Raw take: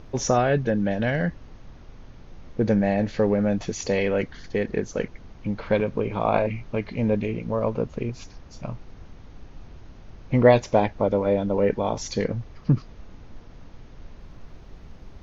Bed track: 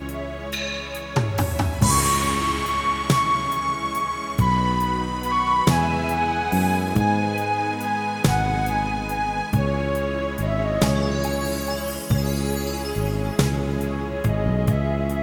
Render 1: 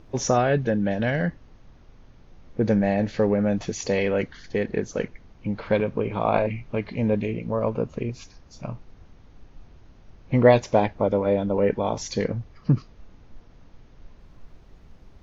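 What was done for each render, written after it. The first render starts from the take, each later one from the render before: noise print and reduce 6 dB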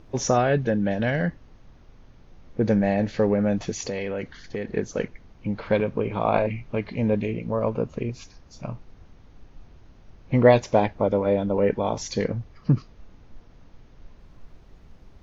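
3.77–4.75 s: compression, threshold -25 dBFS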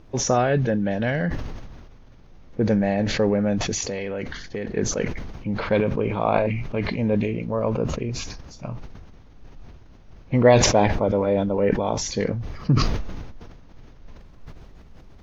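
decay stretcher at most 36 dB/s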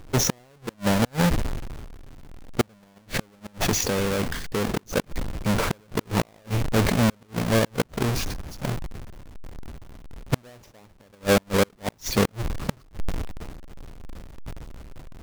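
square wave that keeps the level; inverted gate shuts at -12 dBFS, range -38 dB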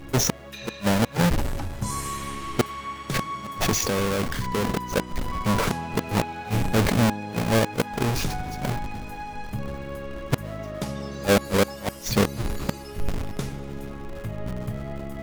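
add bed track -11.5 dB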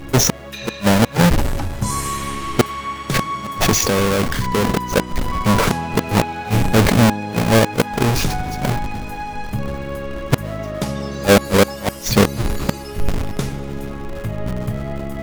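trim +7.5 dB; peak limiter -3 dBFS, peak gain reduction 2.5 dB

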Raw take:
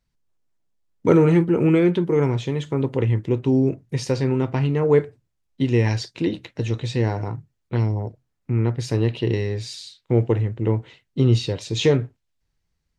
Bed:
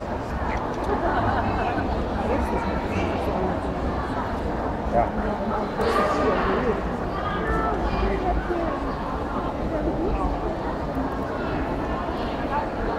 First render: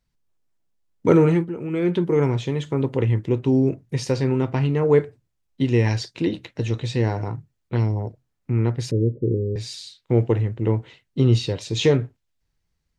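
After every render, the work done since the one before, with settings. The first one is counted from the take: 1.24–1.99 s: dip -12 dB, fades 0.30 s; 8.91–9.56 s: steep low-pass 550 Hz 96 dB/octave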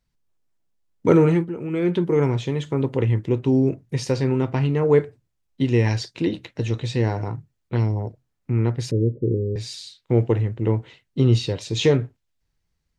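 no audible change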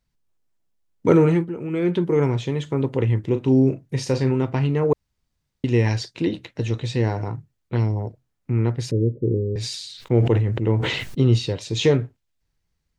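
3.20–4.31 s: doubling 38 ms -10 dB; 4.93–5.64 s: room tone; 9.22–11.21 s: decay stretcher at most 39 dB/s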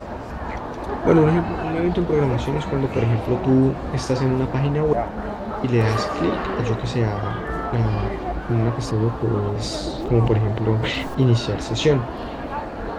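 add bed -3 dB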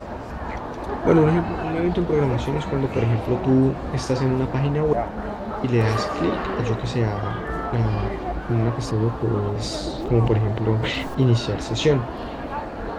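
trim -1 dB

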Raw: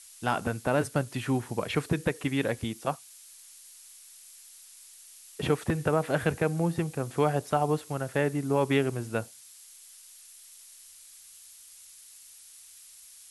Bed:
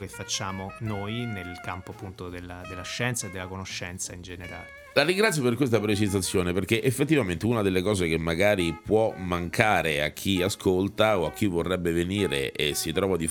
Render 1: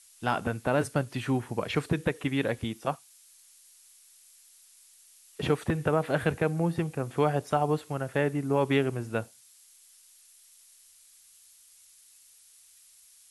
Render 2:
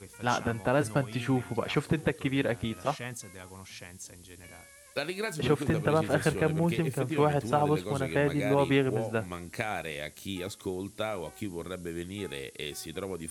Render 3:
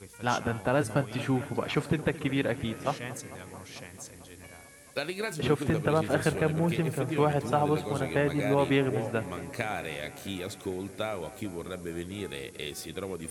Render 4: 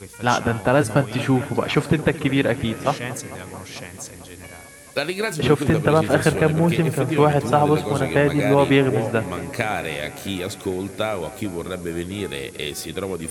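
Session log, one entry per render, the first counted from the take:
noise print and reduce 6 dB
add bed -11.5 dB
bucket-brigade echo 222 ms, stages 4096, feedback 78%, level -17 dB
trim +9 dB

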